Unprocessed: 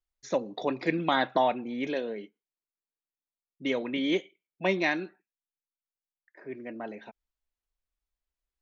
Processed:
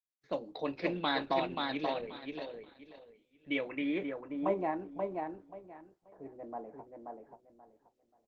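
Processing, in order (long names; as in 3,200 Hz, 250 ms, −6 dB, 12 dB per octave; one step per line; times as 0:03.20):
high-pass filter 99 Hz 6 dB per octave
low-pass that shuts in the quiet parts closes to 1,200 Hz, open at −23 dBFS
noise gate with hold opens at −53 dBFS
repeating echo 554 ms, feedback 23%, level −4 dB
low-pass filter sweep 4,300 Hz → 840 Hz, 0:03.19–0:04.81
on a send at −12.5 dB: convolution reverb, pre-delay 3 ms
on the sum: wrong playback speed 24 fps film run at 25 fps
level −7.5 dB
Opus 12 kbit/s 48,000 Hz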